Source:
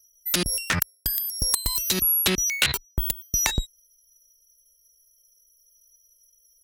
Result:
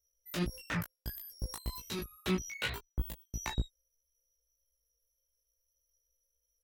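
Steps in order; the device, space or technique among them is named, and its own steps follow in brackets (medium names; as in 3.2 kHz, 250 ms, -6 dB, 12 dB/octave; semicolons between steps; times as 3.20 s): peaking EQ 10 kHz -15 dB 2.8 oct; double-tracked vocal (doubling 17 ms -2 dB; chorus 1.7 Hz, delay 16 ms, depth 3.1 ms); trim -6.5 dB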